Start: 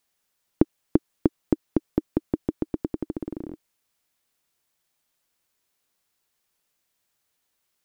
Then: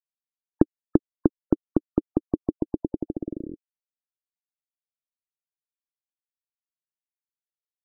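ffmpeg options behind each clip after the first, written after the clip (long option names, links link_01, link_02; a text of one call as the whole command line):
ffmpeg -i in.wav -af "afftfilt=real='re*gte(hypot(re,im),0.02)':imag='im*gte(hypot(re,im),0.02)':win_size=1024:overlap=0.75,volume=1dB" out.wav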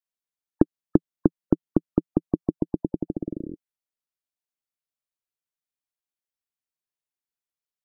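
ffmpeg -i in.wav -af "adynamicequalizer=threshold=0.0112:dfrequency=170:dqfactor=2.3:tfrequency=170:tqfactor=2.3:attack=5:release=100:ratio=0.375:range=3.5:mode=boostabove:tftype=bell" out.wav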